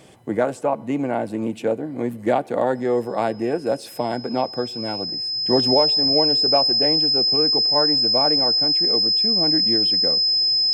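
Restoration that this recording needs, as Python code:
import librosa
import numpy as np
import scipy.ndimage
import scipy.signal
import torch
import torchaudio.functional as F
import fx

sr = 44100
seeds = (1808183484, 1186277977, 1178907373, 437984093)

y = fx.notch(x, sr, hz=5100.0, q=30.0)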